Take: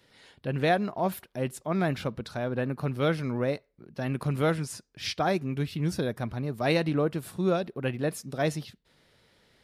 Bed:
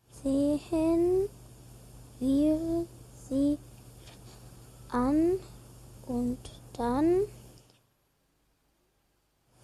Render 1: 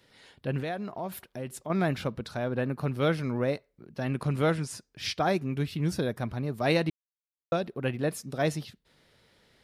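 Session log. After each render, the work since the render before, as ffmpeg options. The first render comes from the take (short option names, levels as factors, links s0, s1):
-filter_complex "[0:a]asettb=1/sr,asplit=3[s0][s1][s2];[s0]atrim=end=0.604[s3];[s1]atrim=start=0.6:end=1.7,asetpts=PTS-STARTPTS,afade=t=in:d=0.004:c=qsin,afade=t=out:st=1.096:d=0.004:c=qsin,acompressor=threshold=0.02:ratio=2.5:attack=3.2:release=140:knee=1:detection=peak[s4];[s2]atrim=start=1.696[s5];[s3][s4]acrossfade=d=0.004:c1=hsin:c2=qsin[s6];[s6][s5]acrossfade=d=0.004:c1=qsin:c2=hsin,asettb=1/sr,asplit=3[s7][s8][s9];[s7]atrim=end=4.034[s10];[s8]atrim=start=4.03:end=4.73,asetpts=PTS-STARTPTS,afade=t=in:d=0.004:c=qsin,afade=t=out:st=0.696:d=0.004:c=qsin,lowpass=11000[s11];[s9]atrim=start=4.726[s12];[s10][s11]acrossfade=d=0.004:c1=hsin:c2=qsin[s13];[s13][s12]acrossfade=d=0.004:c1=qsin:c2=hsin,asplit=3[s14][s15][s16];[s14]atrim=end=6.9,asetpts=PTS-STARTPTS,afade=t=out:st=6.896:d=0.004:c=hsin[s17];[s15]atrim=start=6.9:end=7.52,asetpts=PTS-STARTPTS,volume=0[s18];[s16]atrim=start=7.52,asetpts=PTS-STARTPTS,afade=t=in:d=0.004:c=hsin[s19];[s17][s18][s19]concat=n=3:v=0:a=1"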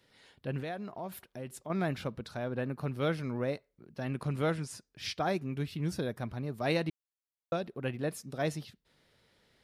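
-af "volume=0.562"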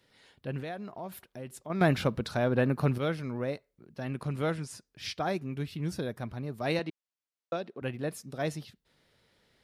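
-filter_complex "[0:a]asettb=1/sr,asplit=3[s0][s1][s2];[s0]atrim=end=6.794[s3];[s1]atrim=start=6.79:end=7.82,asetpts=PTS-STARTPTS,afade=t=in:d=0.004:c=qsin,afade=t=out:st=1.026:d=0.004:c=qsin,highpass=210,lowpass=7000[s4];[s2]atrim=start=7.816[s5];[s3][s4]acrossfade=d=0.004:c1=hsin:c2=qsin[s6];[s6][s5]acrossfade=d=0.004:c1=qsin:c2=hsin,asplit=3[s7][s8][s9];[s7]atrim=end=1.812[s10];[s8]atrim=start=1.808:end=2.982,asetpts=PTS-STARTPTS,volume=2.66[s11];[s9]atrim=start=2.978[s12];[s10][s11]acrossfade=d=0.004:c1=hsin:c2=hsin[s13];[s13][s12]acrossfade=d=0.004:c1=hsin:c2=hsin"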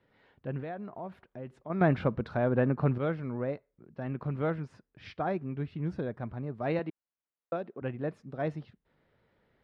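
-af "lowpass=1700"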